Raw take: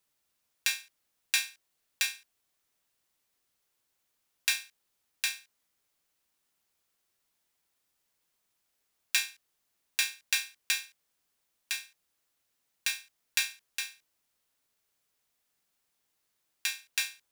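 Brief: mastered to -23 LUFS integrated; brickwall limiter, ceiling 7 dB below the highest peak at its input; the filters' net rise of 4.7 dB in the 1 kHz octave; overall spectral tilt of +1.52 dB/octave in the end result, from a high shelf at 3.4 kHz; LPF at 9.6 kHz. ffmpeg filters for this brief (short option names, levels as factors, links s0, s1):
-af "lowpass=9600,equalizer=f=1000:t=o:g=5.5,highshelf=f=3400:g=4.5,volume=2.99,alimiter=limit=0.668:level=0:latency=1"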